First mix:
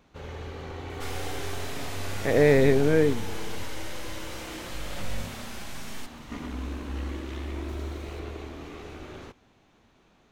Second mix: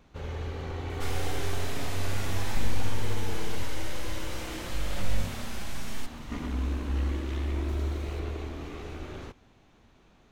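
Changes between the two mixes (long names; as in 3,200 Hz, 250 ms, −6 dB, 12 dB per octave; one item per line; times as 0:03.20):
speech: muted
master: add low-shelf EQ 99 Hz +8 dB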